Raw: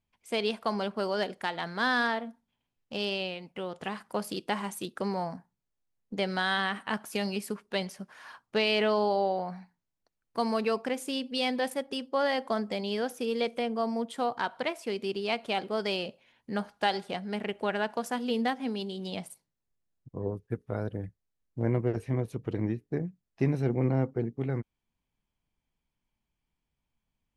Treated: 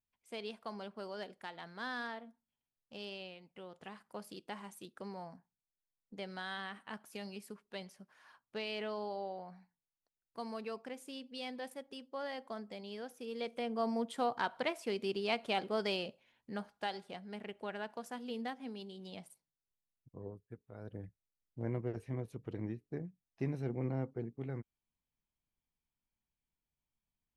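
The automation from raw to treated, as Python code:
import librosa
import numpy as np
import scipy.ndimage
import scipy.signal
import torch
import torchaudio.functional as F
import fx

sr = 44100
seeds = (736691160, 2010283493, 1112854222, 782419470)

y = fx.gain(x, sr, db=fx.line((13.19, -14.0), (13.87, -4.0), (15.8, -4.0), (16.95, -12.0), (20.16, -12.0), (20.72, -19.5), (20.95, -10.0)))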